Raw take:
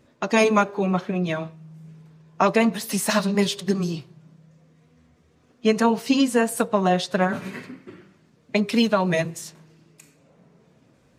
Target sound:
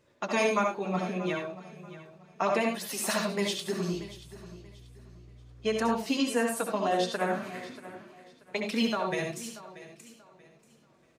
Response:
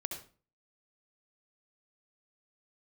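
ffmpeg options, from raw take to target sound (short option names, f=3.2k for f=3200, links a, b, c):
-filter_complex "[0:a]lowshelf=f=320:g=-7,asplit=2[a][b];[b]alimiter=limit=-13.5dB:level=0:latency=1:release=477,volume=2dB[c];[a][c]amix=inputs=2:normalize=0,flanger=delay=1.9:depth=6.6:regen=-48:speed=0.71:shape=sinusoidal,aecho=1:1:634|1268|1902:0.15|0.0434|0.0126,asettb=1/sr,asplit=3[d][e][f];[d]atrim=end=3.934[g];[e]atrim=start=3.93:end=5.96,asetpts=PTS-STARTPTS,afade=t=in:d=0.004:c=qsin,afade=t=out:st=2.026:d=0.004:c=qsin,aeval=exprs='val(0)+0.00891*(sin(2*PI*60*n/s)+sin(2*PI*2*60*n/s)/2+sin(2*PI*3*60*n/s)/3+sin(2*PI*4*60*n/s)/4+sin(2*PI*5*60*n/s)/5)':c=same[h];[f]atrim=start=5.956[i];[g][h]acrossfade=d=0.004:c1=hsin:c2=qsin[j];[j][i]acrossfade=d=0.004:c1=qsin:c2=hsin[k];[1:a]atrim=start_sample=2205,afade=t=out:st=0.16:d=0.01,atrim=end_sample=7497[l];[k][l]afir=irnorm=-1:irlink=0,volume=-7dB"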